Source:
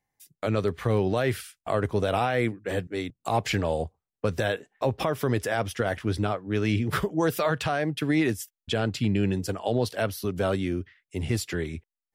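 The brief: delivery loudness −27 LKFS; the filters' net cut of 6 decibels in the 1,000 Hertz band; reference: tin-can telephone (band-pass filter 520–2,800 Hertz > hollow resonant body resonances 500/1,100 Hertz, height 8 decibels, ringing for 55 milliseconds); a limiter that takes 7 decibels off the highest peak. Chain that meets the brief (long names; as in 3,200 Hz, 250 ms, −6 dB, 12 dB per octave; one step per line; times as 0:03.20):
parametric band 1,000 Hz −8 dB
brickwall limiter −20.5 dBFS
band-pass filter 520–2,800 Hz
hollow resonant body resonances 500/1,100 Hz, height 8 dB, ringing for 55 ms
level +9 dB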